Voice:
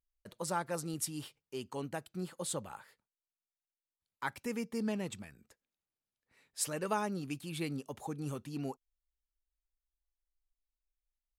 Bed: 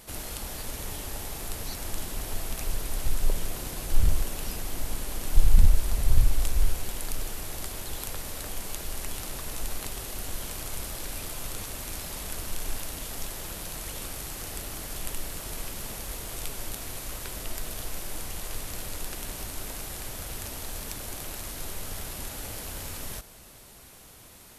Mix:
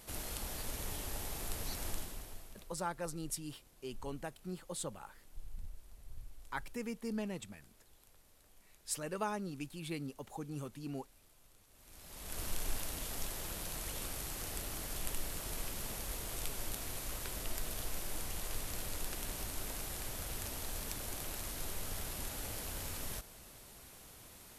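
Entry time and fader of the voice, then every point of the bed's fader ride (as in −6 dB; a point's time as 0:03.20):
2.30 s, −3.5 dB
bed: 0:01.89 −5.5 dB
0:02.84 −29.5 dB
0:11.67 −29.5 dB
0:12.42 −5 dB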